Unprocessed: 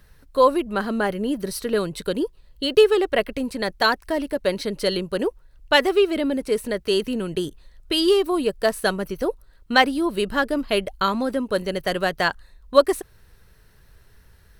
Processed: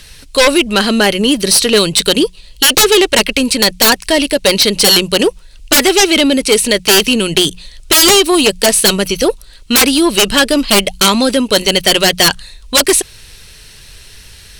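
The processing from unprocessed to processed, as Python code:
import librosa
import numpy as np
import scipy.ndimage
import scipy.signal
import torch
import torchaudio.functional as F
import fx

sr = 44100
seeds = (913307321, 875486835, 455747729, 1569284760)

y = fx.band_shelf(x, sr, hz=4800.0, db=15.0, octaves=2.5)
y = fx.fold_sine(y, sr, drive_db=20, ceiling_db=7.5)
y = fx.hum_notches(y, sr, base_hz=60, count=3)
y = F.gain(torch.from_numpy(y), -11.5).numpy()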